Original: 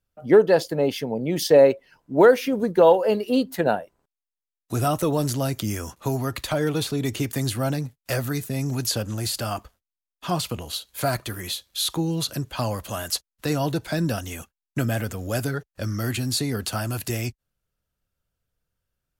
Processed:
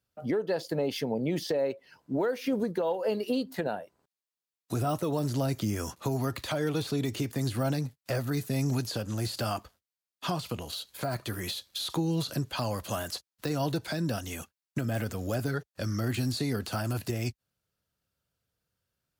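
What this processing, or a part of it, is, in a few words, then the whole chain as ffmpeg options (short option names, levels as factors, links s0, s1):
broadcast voice chain: -af "highpass=82,deesser=0.7,acompressor=threshold=0.0891:ratio=5,equalizer=f=4500:t=o:w=0.58:g=4,alimiter=limit=0.1:level=0:latency=1:release=370"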